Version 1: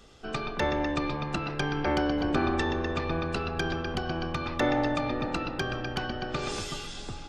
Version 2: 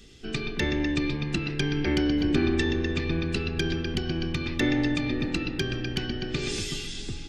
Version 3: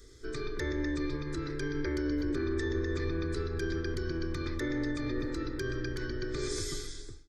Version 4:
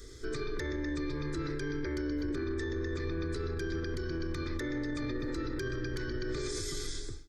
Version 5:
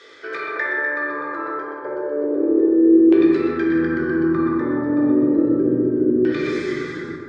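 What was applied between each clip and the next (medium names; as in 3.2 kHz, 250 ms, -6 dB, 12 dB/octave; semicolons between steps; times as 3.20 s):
high-order bell 860 Hz -15 dB; trim +4.5 dB
fade out at the end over 0.51 s; peak limiter -21 dBFS, peak gain reduction 8 dB; static phaser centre 750 Hz, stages 6
peak limiter -33 dBFS, peak gain reduction 10.5 dB; trim +5.5 dB
LFO low-pass saw down 0.32 Hz 350–2900 Hz; plate-style reverb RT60 2.2 s, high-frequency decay 0.45×, DRR -1.5 dB; high-pass sweep 660 Hz -> 210 Hz, 1.76–3.91 s; trim +8.5 dB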